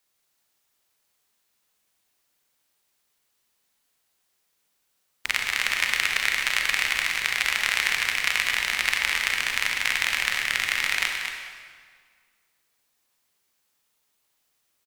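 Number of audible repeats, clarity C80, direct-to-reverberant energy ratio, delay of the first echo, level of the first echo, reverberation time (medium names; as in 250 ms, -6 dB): 1, 2.5 dB, 1.0 dB, 229 ms, -7.5 dB, 1.8 s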